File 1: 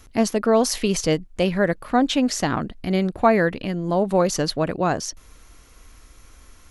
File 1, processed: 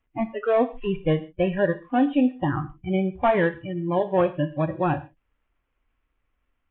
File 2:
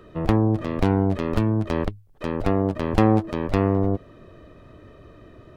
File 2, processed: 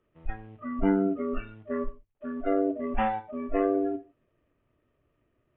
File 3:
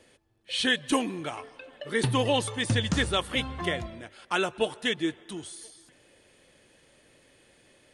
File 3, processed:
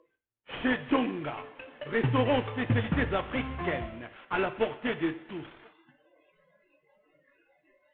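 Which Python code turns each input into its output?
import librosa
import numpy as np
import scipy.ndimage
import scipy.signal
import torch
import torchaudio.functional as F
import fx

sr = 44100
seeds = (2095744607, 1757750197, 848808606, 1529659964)

y = fx.cvsd(x, sr, bps=16000)
y = fx.noise_reduce_blind(y, sr, reduce_db=26)
y = fx.rev_gated(y, sr, seeds[0], gate_ms=170, shape='falling', drr_db=10.0)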